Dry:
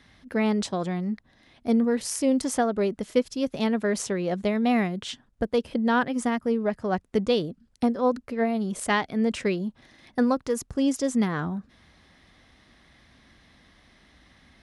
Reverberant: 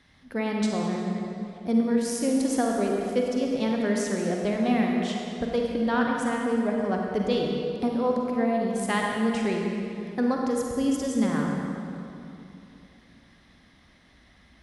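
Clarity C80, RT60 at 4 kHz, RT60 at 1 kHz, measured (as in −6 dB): 1.5 dB, 2.0 s, 2.6 s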